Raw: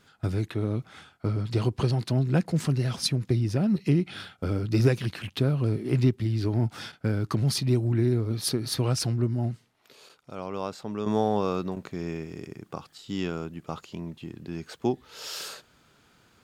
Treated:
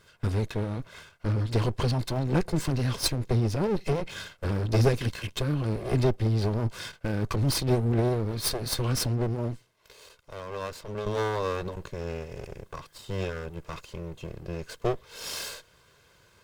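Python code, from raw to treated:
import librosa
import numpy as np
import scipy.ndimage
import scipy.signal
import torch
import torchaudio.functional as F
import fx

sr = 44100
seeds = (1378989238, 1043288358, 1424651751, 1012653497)

y = fx.lower_of_two(x, sr, delay_ms=1.9)
y = y * 10.0 ** (2.5 / 20.0)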